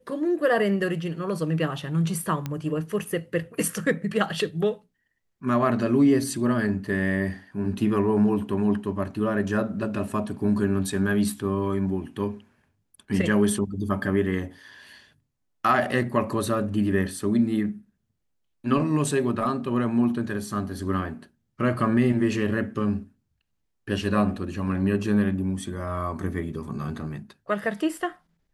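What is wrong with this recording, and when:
0:02.46: click −16 dBFS

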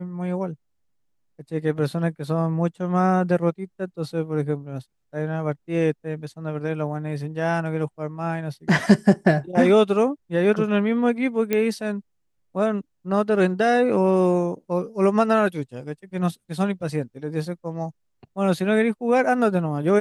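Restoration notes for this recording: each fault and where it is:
0:11.53: click −9 dBFS

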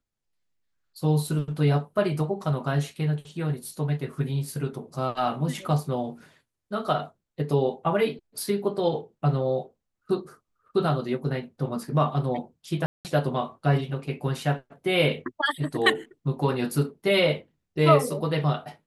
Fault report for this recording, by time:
0:12.86–0:13.05: drop-out 188 ms

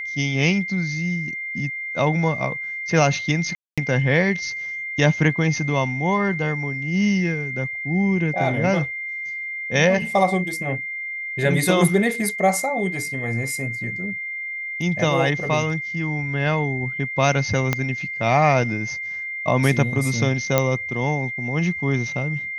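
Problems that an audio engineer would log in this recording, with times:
whistle 2,100 Hz −27 dBFS
0:03.55–0:03.78: drop-out 226 ms
0:17.73: click −6 dBFS
0:20.58: click −3 dBFS

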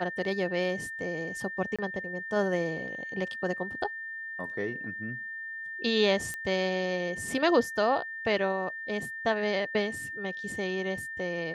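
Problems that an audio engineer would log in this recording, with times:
whistle 1,800 Hz −36 dBFS
0:01.76–0:01.79: drop-out 26 ms
0:06.34: click −21 dBFS

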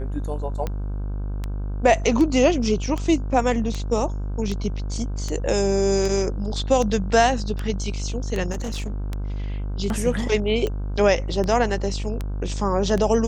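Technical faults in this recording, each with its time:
mains buzz 50 Hz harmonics 32 −27 dBFS
scratch tick 78 rpm −14 dBFS
0:08.51–0:09.10: clipping −24.5 dBFS

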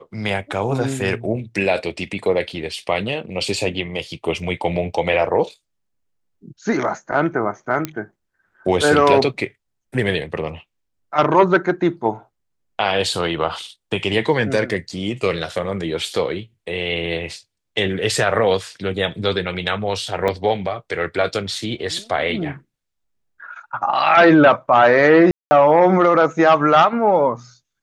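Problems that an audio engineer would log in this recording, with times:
0:07.85: click −8 dBFS
0:20.28: drop-out 2.1 ms
0:25.31–0:25.51: drop-out 200 ms

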